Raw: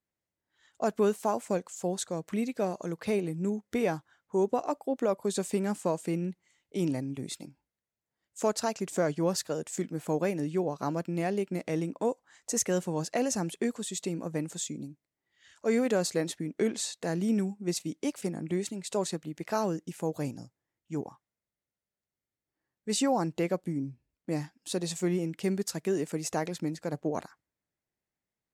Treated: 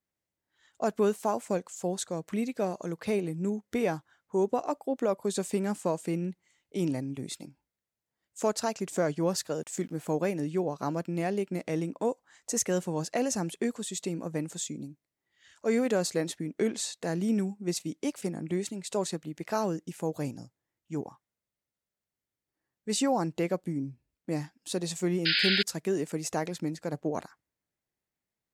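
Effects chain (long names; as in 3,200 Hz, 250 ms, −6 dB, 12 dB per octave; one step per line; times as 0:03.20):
0:09.58–0:10.09: centre clipping without the shift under −57 dBFS
0:25.25–0:25.63: sound drawn into the spectrogram noise 1,400–5,100 Hz −26 dBFS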